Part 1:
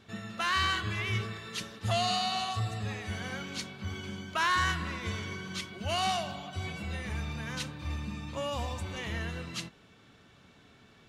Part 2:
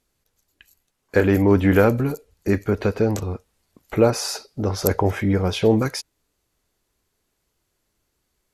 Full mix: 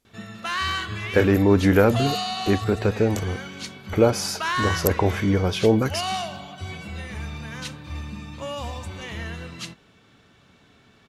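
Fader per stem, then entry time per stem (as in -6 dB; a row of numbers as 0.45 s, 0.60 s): +2.5 dB, -1.0 dB; 0.05 s, 0.00 s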